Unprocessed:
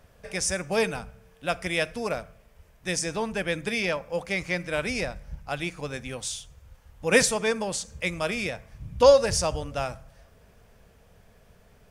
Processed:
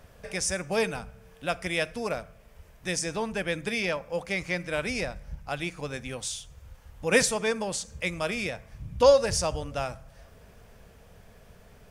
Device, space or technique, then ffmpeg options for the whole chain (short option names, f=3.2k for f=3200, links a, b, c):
parallel compression: -filter_complex "[0:a]asplit=2[a][b];[b]acompressor=threshold=-46dB:ratio=6,volume=0dB[c];[a][c]amix=inputs=2:normalize=0,volume=-2.5dB"